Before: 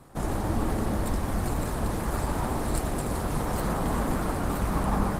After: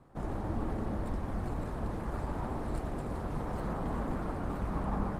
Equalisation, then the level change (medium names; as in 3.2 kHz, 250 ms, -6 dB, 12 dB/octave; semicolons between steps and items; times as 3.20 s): low-pass 1.6 kHz 6 dB/octave; -7.0 dB